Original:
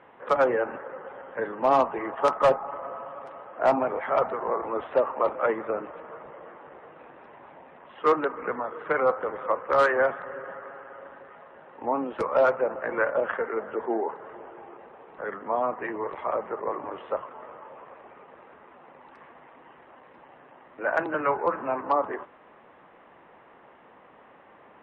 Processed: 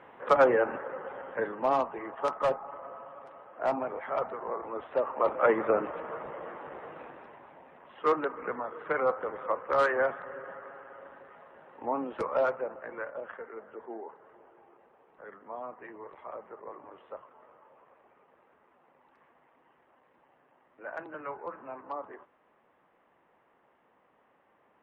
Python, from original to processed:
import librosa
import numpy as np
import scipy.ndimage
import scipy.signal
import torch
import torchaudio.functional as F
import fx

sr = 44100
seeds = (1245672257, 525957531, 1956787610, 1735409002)

y = fx.gain(x, sr, db=fx.line((1.29, 0.5), (1.84, -7.5), (4.88, -7.5), (5.62, 3.5), (6.97, 3.5), (7.48, -4.5), (12.26, -4.5), (13.1, -14.0)))